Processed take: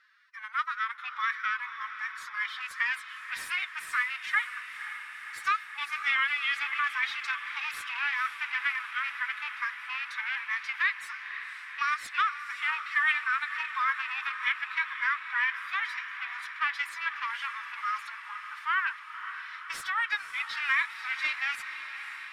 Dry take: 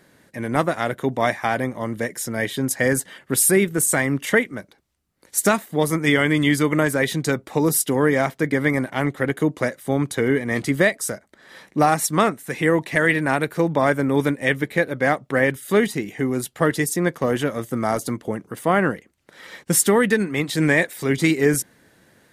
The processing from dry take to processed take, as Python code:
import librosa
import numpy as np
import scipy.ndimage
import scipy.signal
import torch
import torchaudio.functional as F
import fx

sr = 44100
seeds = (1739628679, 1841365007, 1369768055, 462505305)

p1 = fx.rattle_buzz(x, sr, strikes_db=-20.0, level_db=-17.0)
p2 = scipy.signal.sosfilt(scipy.signal.butter(8, 940.0, 'highpass', fs=sr, output='sos'), p1)
p3 = fx.peak_eq(p2, sr, hz=5500.0, db=14.0, octaves=0.69)
p4 = fx.pitch_keep_formants(p3, sr, semitones=11.0)
p5 = 10.0 ** (-16.0 / 20.0) * np.tanh(p4 / 10.0 ** (-16.0 / 20.0))
p6 = p4 + F.gain(torch.from_numpy(p5), -4.0).numpy()
p7 = fx.air_absorb(p6, sr, metres=450.0)
p8 = p7 + fx.echo_diffused(p7, sr, ms=528, feedback_pct=74, wet_db=-11, dry=0)
y = F.gain(torch.from_numpy(p8), -4.0).numpy()